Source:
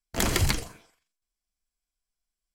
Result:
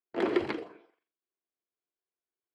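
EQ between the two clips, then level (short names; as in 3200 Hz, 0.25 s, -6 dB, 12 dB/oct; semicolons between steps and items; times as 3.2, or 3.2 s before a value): resonant high-pass 360 Hz, resonance Q 3.6; LPF 9000 Hz 12 dB/oct; air absorption 440 m; -3.0 dB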